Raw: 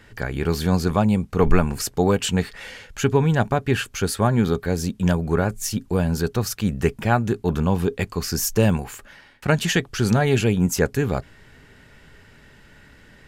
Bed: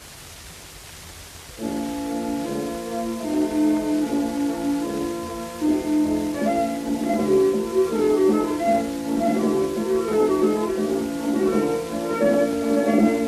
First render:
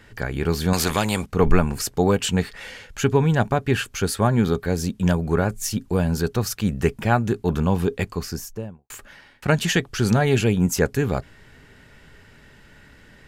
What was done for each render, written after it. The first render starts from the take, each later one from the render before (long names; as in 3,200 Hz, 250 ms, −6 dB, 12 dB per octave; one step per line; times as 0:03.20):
0:00.73–0:01.26: every bin compressed towards the loudest bin 2 to 1
0:07.95–0:08.90: fade out and dull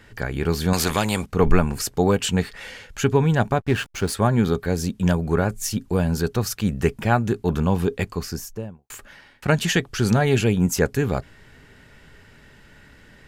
0:03.60–0:04.13: slack as between gear wheels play −28 dBFS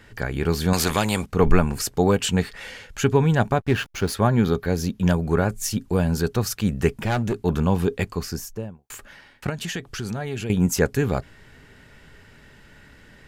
0:03.73–0:05.10: parametric band 8,300 Hz −9.5 dB 0.28 octaves
0:07.05–0:07.45: hard clipping −18.5 dBFS
0:09.49–0:10.50: downward compressor 2.5 to 1, threshold −30 dBFS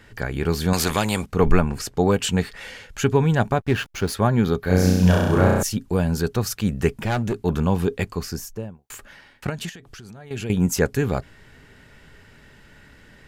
0:01.60–0:02.10: low-pass filter 3,000 Hz → 7,900 Hz 6 dB per octave
0:04.63–0:05.63: flutter between parallel walls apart 5.6 metres, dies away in 1.3 s
0:09.69–0:10.31: downward compressor, threshold −38 dBFS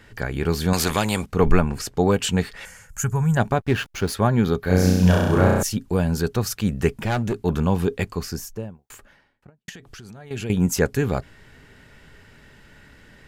0:02.65–0:03.37: drawn EQ curve 180 Hz 0 dB, 290 Hz −18 dB, 660 Hz −8 dB, 1,400 Hz −2 dB, 3,800 Hz −18 dB, 7,000 Hz +7 dB
0:08.59–0:09.68: fade out and dull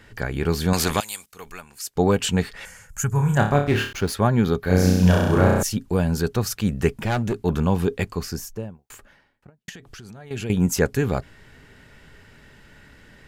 0:01.00–0:01.96: first-order pre-emphasis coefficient 0.97
0:03.09–0:03.93: flutter between parallel walls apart 4.8 metres, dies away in 0.39 s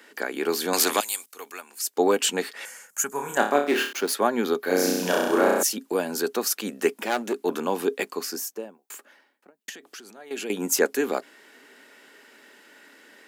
Butterworth high-pass 260 Hz 36 dB per octave
high-shelf EQ 8,300 Hz +8 dB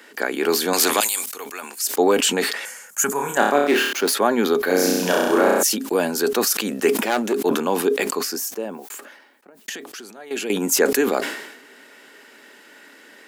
in parallel at −2.5 dB: brickwall limiter −14.5 dBFS, peak gain reduction 9 dB
on the sum: level that may fall only so fast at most 60 dB per second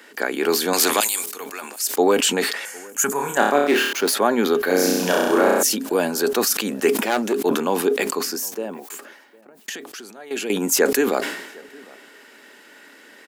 slap from a distant wall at 130 metres, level −24 dB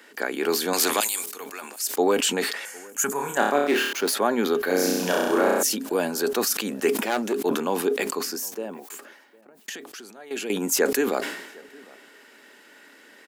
level −4 dB